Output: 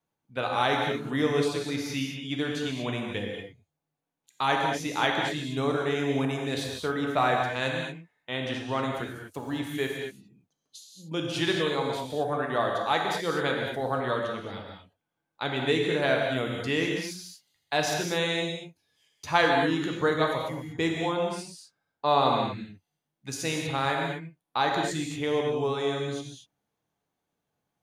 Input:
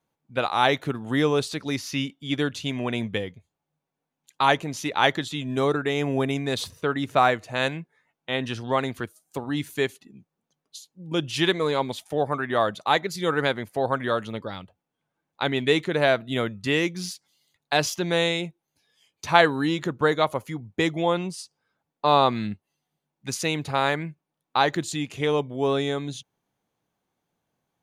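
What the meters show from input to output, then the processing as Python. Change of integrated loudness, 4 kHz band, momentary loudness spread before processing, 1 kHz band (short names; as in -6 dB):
-3.0 dB, -3.0 dB, 13 LU, -3.0 dB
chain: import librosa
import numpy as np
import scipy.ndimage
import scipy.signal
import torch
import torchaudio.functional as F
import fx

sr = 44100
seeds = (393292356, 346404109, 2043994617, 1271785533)

y = fx.vibrato(x, sr, rate_hz=1.3, depth_cents=11.0)
y = fx.rev_gated(y, sr, seeds[0], gate_ms=260, shape='flat', drr_db=0.0)
y = y * librosa.db_to_amplitude(-6.0)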